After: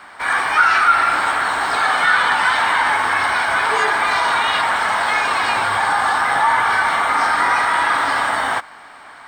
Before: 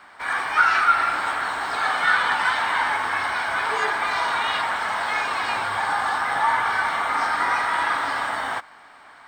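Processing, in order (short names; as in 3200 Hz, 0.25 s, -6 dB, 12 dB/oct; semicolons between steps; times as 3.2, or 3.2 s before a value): bell 9100 Hz +5 dB 0.21 oct; in parallel at +2.5 dB: limiter -16 dBFS, peak gain reduction 10 dB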